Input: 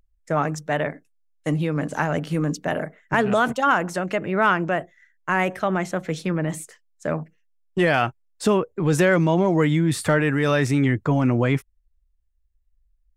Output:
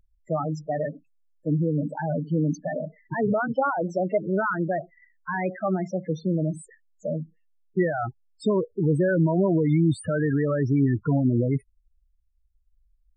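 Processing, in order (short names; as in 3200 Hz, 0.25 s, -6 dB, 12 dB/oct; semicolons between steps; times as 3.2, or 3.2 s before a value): 3.48–4.18 dynamic EQ 600 Hz, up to +6 dB, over -31 dBFS, Q 0.94; limiter -12.5 dBFS, peak gain reduction 8 dB; loudest bins only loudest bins 8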